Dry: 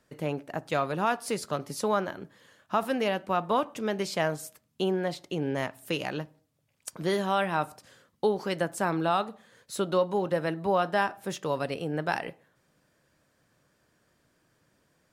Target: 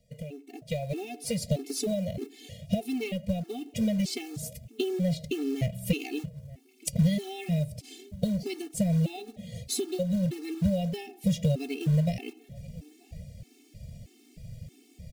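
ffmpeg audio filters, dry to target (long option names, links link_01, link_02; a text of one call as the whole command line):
ffmpeg -i in.wav -filter_complex "[0:a]asubboost=boost=6:cutoff=140,acompressor=threshold=-41dB:ratio=6,asuperstop=centerf=1200:order=12:qfactor=0.9,asplit=2[link_01][link_02];[link_02]adelay=927,lowpass=frequency=1700:poles=1,volume=-21.5dB,asplit=2[link_03][link_04];[link_04]adelay=927,lowpass=frequency=1700:poles=1,volume=0.2[link_05];[link_03][link_05]amix=inputs=2:normalize=0[link_06];[link_01][link_06]amix=inputs=2:normalize=0,dynaudnorm=framelen=210:gausssize=7:maxgain=14dB,asettb=1/sr,asplit=3[link_07][link_08][link_09];[link_07]atrim=end=2.934[link_10];[link_08]atrim=start=2.93:end=3.62,asetpts=PTS-STARTPTS,afade=type=in:duration=0.004:curve=qsin,afade=type=out:start_time=0.686:duration=0.004:curve=qsin,aeval=exprs='(tanh(2.82*val(0)+0.45)-tanh(0.45))/2.82':channel_layout=same[link_11];[link_09]atrim=start=3.616[link_12];[link_10][link_11]acrossfade=duration=0.004:curve1=hsin:curve2=qsin[link_13];[link_13][link_12]acrossfade=duration=0.004:curve1=qsin:curve2=hsin,acrusher=bits=5:mode=log:mix=0:aa=0.000001,lowshelf=frequency=180:gain=8.5,afftfilt=real='re*gt(sin(2*PI*1.6*pts/sr)*(1-2*mod(floor(b*sr/1024/230),2)),0)':imag='im*gt(sin(2*PI*1.6*pts/sr)*(1-2*mod(floor(b*sr/1024/230),2)),0)':win_size=1024:overlap=0.75,volume=1.5dB" out.wav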